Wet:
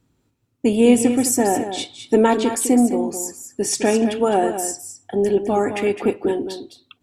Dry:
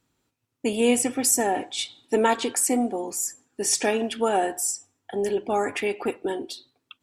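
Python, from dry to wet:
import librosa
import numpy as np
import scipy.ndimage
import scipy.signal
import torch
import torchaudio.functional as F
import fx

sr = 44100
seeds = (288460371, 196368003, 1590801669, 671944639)

p1 = fx.low_shelf(x, sr, hz=460.0, db=12.0)
y = p1 + fx.echo_single(p1, sr, ms=209, db=-9.5, dry=0)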